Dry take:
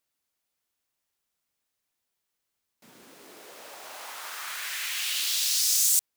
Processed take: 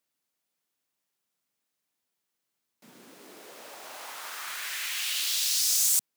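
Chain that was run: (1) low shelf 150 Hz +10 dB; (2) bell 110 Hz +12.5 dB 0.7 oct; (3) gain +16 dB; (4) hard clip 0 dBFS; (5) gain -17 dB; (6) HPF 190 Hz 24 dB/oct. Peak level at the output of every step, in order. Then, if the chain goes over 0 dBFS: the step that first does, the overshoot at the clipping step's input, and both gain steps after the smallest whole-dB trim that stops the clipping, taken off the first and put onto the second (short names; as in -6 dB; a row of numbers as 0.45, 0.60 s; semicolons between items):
-9.0, -9.0, +7.0, 0.0, -17.0, -16.0 dBFS; step 3, 7.0 dB; step 3 +9 dB, step 5 -10 dB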